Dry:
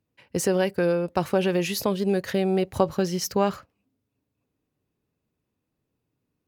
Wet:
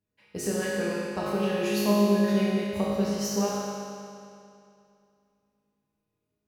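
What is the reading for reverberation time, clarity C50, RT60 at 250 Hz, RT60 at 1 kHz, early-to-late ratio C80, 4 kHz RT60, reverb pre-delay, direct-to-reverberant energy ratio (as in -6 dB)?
2.5 s, -3.5 dB, 2.5 s, 2.5 s, -1.5 dB, 2.3 s, 5 ms, -8.5 dB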